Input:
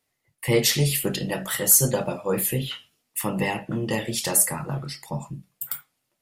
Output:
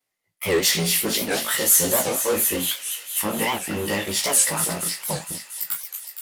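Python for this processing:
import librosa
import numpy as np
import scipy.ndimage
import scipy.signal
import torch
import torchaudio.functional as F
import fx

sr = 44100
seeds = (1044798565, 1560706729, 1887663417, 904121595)

p1 = fx.frame_reverse(x, sr, frame_ms=38.0)
p2 = fx.fuzz(p1, sr, gain_db=32.0, gate_db=-40.0)
p3 = p1 + (p2 * librosa.db_to_amplitude(-10.0))
p4 = fx.low_shelf(p3, sr, hz=190.0, db=-11.0)
p5 = p4 + fx.echo_wet_highpass(p4, sr, ms=232, feedback_pct=73, hz=2300.0, wet_db=-7.0, dry=0)
y = fx.record_warp(p5, sr, rpm=78.0, depth_cents=250.0)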